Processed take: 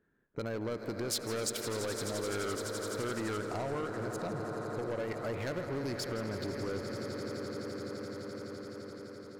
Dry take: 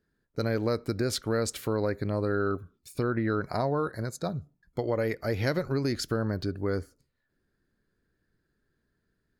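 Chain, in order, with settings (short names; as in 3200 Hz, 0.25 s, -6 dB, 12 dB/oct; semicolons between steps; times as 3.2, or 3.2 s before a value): Wiener smoothing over 9 samples; low shelf 140 Hz -10.5 dB; swelling echo 85 ms, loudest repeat 8, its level -16.5 dB; soft clip -27.5 dBFS, distortion -11 dB; 1.09–3.38 high shelf 2500 Hz +9.5 dB; compressor 2:1, threshold -45 dBFS, peak gain reduction 11.5 dB; warbling echo 0.16 s, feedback 74%, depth 167 cents, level -14 dB; gain +4.5 dB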